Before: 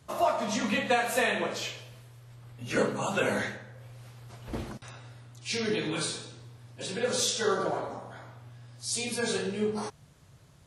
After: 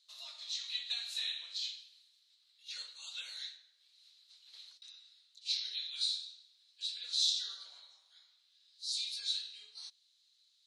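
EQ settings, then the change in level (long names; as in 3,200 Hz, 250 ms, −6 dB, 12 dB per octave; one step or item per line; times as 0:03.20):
four-pole ladder band-pass 4,200 Hz, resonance 80%
+3.0 dB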